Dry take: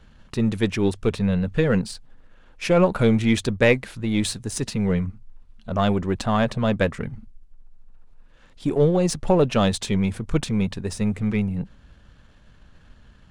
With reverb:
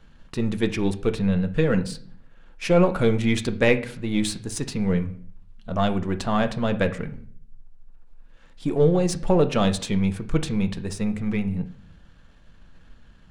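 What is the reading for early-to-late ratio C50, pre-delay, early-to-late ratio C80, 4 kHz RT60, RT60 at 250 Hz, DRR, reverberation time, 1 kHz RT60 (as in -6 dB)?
15.5 dB, 4 ms, 19.0 dB, 0.45 s, 0.80 s, 8.0 dB, 0.55 s, 0.50 s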